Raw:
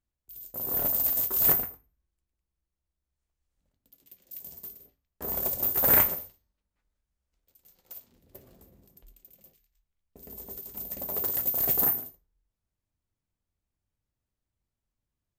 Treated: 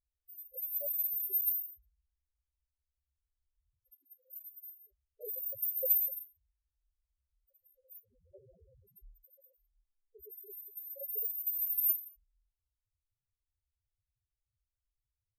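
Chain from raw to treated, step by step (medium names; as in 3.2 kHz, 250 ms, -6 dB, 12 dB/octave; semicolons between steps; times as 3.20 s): graphic EQ 125/250/500/8000 Hz +3/-6/+8/+7 dB; loudest bins only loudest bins 2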